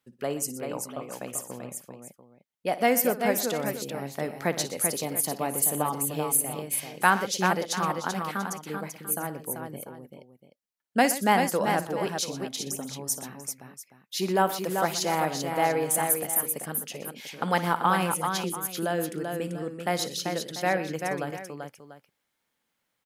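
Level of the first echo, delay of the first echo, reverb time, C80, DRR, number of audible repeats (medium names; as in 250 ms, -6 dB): -15.0 dB, 57 ms, no reverb, no reverb, no reverb, 4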